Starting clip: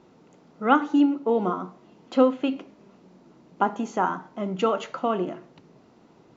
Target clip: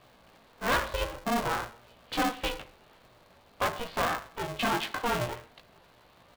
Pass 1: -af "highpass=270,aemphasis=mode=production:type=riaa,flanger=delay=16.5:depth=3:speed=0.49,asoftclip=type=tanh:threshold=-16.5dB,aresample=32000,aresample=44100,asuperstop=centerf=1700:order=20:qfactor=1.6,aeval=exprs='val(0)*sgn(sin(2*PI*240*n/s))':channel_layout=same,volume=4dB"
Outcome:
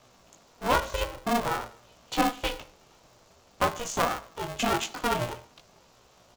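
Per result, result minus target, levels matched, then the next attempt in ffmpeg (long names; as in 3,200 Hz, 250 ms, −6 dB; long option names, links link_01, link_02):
soft clipping: distortion −8 dB; 8,000 Hz band +3.0 dB
-af "highpass=270,aemphasis=mode=production:type=riaa,flanger=delay=16.5:depth=3:speed=0.49,asoftclip=type=tanh:threshold=-26dB,aresample=32000,aresample=44100,asuperstop=centerf=1700:order=20:qfactor=1.6,aeval=exprs='val(0)*sgn(sin(2*PI*240*n/s))':channel_layout=same,volume=4dB"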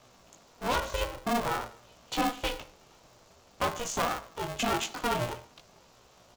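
8,000 Hz band +4.5 dB
-af "highpass=270,aemphasis=mode=production:type=riaa,flanger=delay=16.5:depth=3:speed=0.49,asoftclip=type=tanh:threshold=-26dB,aresample=32000,aresample=44100,asuperstop=centerf=6200:order=20:qfactor=1.6,aeval=exprs='val(0)*sgn(sin(2*PI*240*n/s))':channel_layout=same,volume=4dB"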